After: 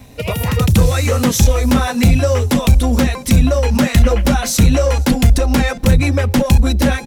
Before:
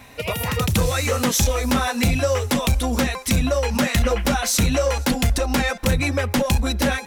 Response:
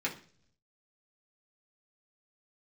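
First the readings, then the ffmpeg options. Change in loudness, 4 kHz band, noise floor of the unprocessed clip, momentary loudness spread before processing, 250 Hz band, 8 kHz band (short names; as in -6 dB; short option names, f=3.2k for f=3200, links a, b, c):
+6.5 dB, +2.0 dB, -35 dBFS, 3 LU, +7.5 dB, +2.0 dB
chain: -filter_complex "[0:a]lowshelf=f=350:g=8,acrossover=split=790|3100[a][b][c];[a]aecho=1:1:661:0.0944[d];[b]aeval=exprs='sgn(val(0))*max(abs(val(0))-0.00316,0)':c=same[e];[d][e][c]amix=inputs=3:normalize=0,volume=2dB"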